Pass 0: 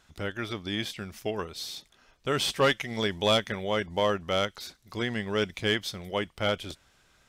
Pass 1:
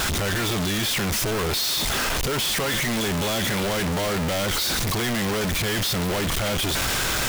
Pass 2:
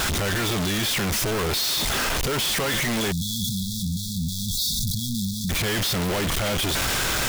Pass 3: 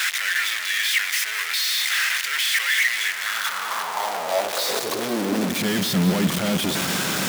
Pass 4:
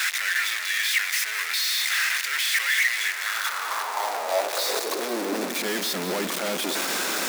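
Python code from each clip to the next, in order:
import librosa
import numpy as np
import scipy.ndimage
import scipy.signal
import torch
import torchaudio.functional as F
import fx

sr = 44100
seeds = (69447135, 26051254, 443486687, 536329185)

y1 = np.sign(x) * np.sqrt(np.mean(np.square(x)))
y1 = y1 * 10.0 ** (6.5 / 20.0)
y2 = fx.spec_erase(y1, sr, start_s=3.12, length_s=2.38, low_hz=250.0, high_hz=3300.0)
y3 = fx.schmitt(y2, sr, flips_db=-27.5)
y3 = fx.filter_sweep_highpass(y3, sr, from_hz=1900.0, to_hz=190.0, start_s=3.07, end_s=5.79, q=3.4)
y3 = fx.echo_split(y3, sr, split_hz=480.0, low_ms=112, high_ms=207, feedback_pct=52, wet_db=-12.5)
y4 = scipy.signal.sosfilt(scipy.signal.butter(4, 290.0, 'highpass', fs=sr, output='sos'), y3)
y4 = fx.peak_eq(y4, sr, hz=3100.0, db=-4.5, octaves=0.23)
y4 = y4 * 10.0 ** (-1.5 / 20.0)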